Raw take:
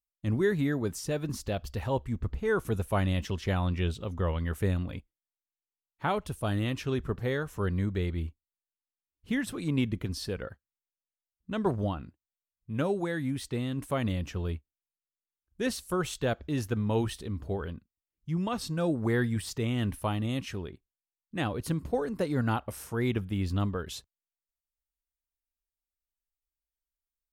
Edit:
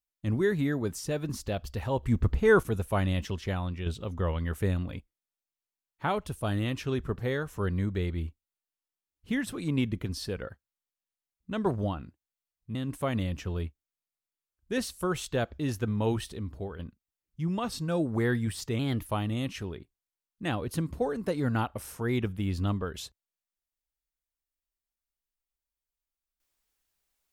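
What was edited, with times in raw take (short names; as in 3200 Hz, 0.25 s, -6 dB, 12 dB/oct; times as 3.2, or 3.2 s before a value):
2.03–2.63 gain +7 dB
3.21–3.86 fade out, to -7 dB
12.75–13.64 cut
17.2–17.68 fade out, to -7 dB
19.68–19.98 speed 113%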